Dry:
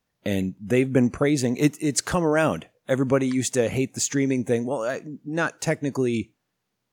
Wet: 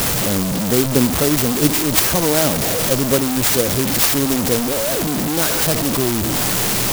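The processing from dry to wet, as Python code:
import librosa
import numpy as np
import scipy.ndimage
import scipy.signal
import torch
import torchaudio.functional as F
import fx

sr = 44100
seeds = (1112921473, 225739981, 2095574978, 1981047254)

y = fx.delta_mod(x, sr, bps=64000, step_db=-17.5)
y = fx.high_shelf(y, sr, hz=4100.0, db=7.5)
y = fx.clock_jitter(y, sr, seeds[0], jitter_ms=0.15)
y = y * 10.0 ** (3.5 / 20.0)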